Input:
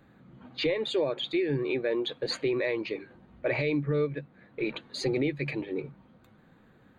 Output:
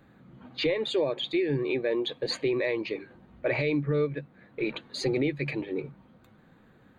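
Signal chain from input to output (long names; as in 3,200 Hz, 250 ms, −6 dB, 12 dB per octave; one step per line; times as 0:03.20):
0:00.96–0:02.89: notch filter 1,400 Hz, Q 5.8
level +1 dB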